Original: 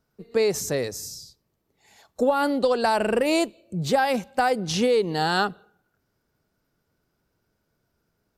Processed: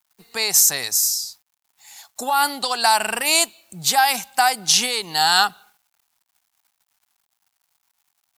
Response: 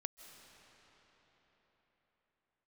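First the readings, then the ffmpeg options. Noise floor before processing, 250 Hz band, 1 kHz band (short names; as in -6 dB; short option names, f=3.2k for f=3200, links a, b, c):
-75 dBFS, -10.0 dB, +5.5 dB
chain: -af "crystalizer=i=9:c=0,acrusher=bits=8:mix=0:aa=0.000001,lowshelf=f=640:t=q:w=3:g=-6.5,volume=-2.5dB"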